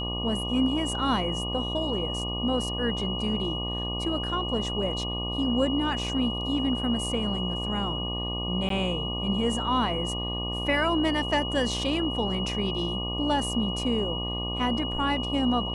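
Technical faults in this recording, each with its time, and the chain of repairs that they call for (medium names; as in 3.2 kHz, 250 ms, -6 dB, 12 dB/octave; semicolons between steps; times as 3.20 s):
buzz 60 Hz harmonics 20 -33 dBFS
whine 2.9 kHz -32 dBFS
8.69–8.70 s: dropout 13 ms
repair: de-hum 60 Hz, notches 20; band-stop 2.9 kHz, Q 30; interpolate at 8.69 s, 13 ms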